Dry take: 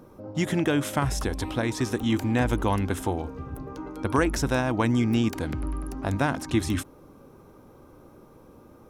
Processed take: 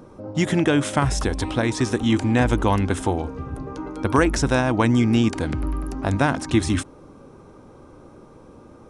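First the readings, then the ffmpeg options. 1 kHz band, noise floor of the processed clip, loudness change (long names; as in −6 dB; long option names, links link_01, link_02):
+5.0 dB, −47 dBFS, +5.0 dB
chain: -af "aresample=22050,aresample=44100,volume=5dB"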